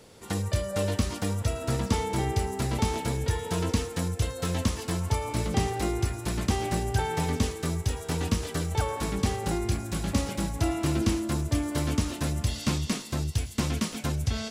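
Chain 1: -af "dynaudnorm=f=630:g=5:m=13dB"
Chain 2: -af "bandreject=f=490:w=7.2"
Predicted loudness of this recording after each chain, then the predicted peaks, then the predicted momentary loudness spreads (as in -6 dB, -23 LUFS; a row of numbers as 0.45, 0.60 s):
-18.0, -29.0 LUFS; -2.5, -13.5 dBFS; 7, 3 LU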